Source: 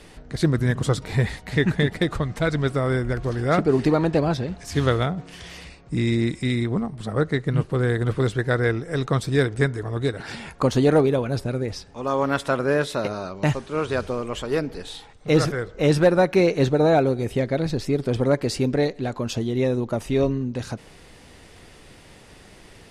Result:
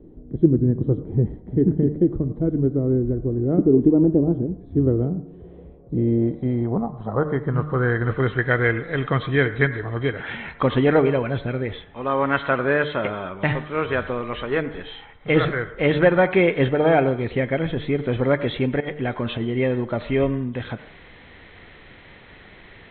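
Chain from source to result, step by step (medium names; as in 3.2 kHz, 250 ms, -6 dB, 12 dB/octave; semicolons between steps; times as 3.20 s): knee-point frequency compression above 3 kHz 4:1; de-hum 150.3 Hz, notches 20; 18.80–19.45 s: compressor with a negative ratio -25 dBFS, ratio -0.5; low-pass sweep 330 Hz -> 2.1 kHz, 5.16–8.52 s; on a send: reverberation RT60 0.50 s, pre-delay 77 ms, DRR 15 dB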